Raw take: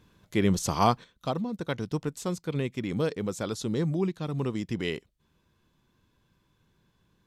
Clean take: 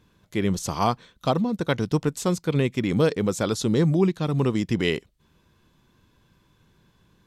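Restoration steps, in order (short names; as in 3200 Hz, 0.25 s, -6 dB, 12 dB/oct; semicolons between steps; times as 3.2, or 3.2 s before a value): gain correction +7.5 dB, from 1.04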